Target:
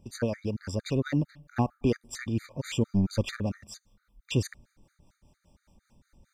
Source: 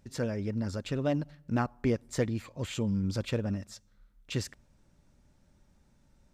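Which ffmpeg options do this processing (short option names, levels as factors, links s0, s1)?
-filter_complex "[0:a]acrossover=split=550[s0][s1];[s0]aeval=exprs='val(0)*(1-0.5/2+0.5/2*cos(2*PI*5*n/s))':c=same[s2];[s1]aeval=exprs='val(0)*(1-0.5/2-0.5/2*cos(2*PI*5*n/s))':c=same[s3];[s2][s3]amix=inputs=2:normalize=0,asettb=1/sr,asplit=3[s4][s5][s6];[s4]atrim=end=2.854[s7];[s5]atrim=start=2.85:end=3.41,asetpts=PTS-STARTPTS,afade=t=in:d=0.004:c=qsin,afade=t=out:st=0.556:d=0.004:c=qsin,aeval=exprs='0.106*(cos(1*acos(clip(val(0)/0.106,-1,1)))-cos(1*PI/2))+0.00841*(cos(6*acos(clip(val(0)/0.106,-1,1)))-cos(6*PI/2))':c=same[s8];[s6]atrim=start=3.406[s9];[s7][s8]acrossfade=d=0.004:c1=hsin:c2=qsin[s10];[s10][s9]acrossfade=d=0.004:c1=qsin:c2=hsin,afftfilt=real='re*gt(sin(2*PI*4.4*pts/sr)*(1-2*mod(floor(b*sr/1024/1200),2)),0)':imag='im*gt(sin(2*PI*4.4*pts/sr)*(1-2*mod(floor(b*sr/1024/1200),2)),0)':win_size=1024:overlap=0.75,volume=2.37"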